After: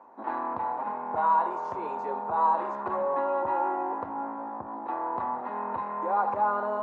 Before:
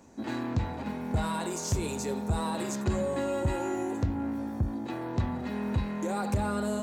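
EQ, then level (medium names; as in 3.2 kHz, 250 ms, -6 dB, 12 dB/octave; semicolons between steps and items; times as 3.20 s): Bessel high-pass 750 Hz, order 2; resonant low-pass 1 kHz, resonance Q 3.5; distance through air 52 m; +5.0 dB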